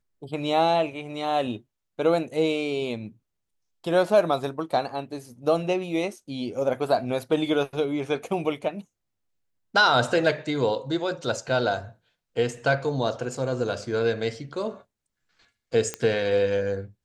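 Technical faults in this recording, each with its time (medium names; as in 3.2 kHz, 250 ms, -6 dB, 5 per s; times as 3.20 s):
15.94 s: pop -13 dBFS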